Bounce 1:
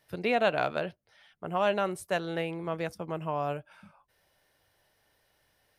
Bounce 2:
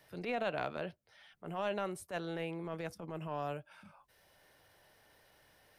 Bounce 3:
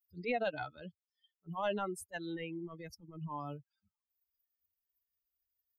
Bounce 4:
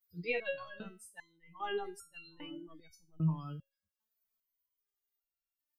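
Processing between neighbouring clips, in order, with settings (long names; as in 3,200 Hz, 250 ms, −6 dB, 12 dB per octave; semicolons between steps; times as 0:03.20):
transient designer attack −11 dB, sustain +1 dB; multiband upward and downward compressor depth 40%; level −6 dB
spectral dynamics exaggerated over time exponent 3; level +5.5 dB
dynamic equaliser 630 Hz, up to −6 dB, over −47 dBFS, Q 1.2; backwards echo 969 ms −9 dB; step-sequenced resonator 2.5 Hz 160–1,400 Hz; level +15 dB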